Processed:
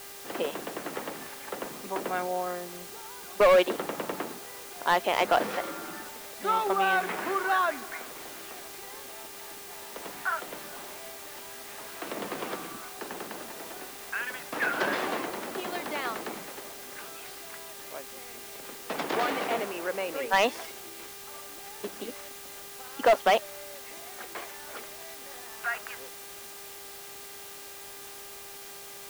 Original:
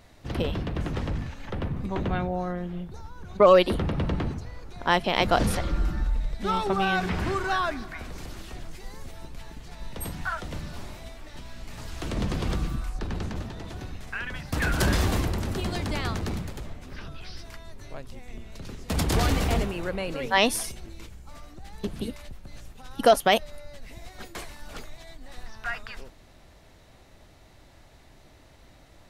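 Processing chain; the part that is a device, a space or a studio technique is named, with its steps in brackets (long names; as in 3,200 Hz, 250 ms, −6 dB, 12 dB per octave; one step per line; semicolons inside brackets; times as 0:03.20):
high-pass filter 190 Hz 12 dB per octave
aircraft radio (band-pass filter 400–2,600 Hz; hard clipping −17 dBFS, distortion −11 dB; hum with harmonics 400 Hz, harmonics 39, −52 dBFS −4 dB per octave; white noise bed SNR 13 dB)
level +1.5 dB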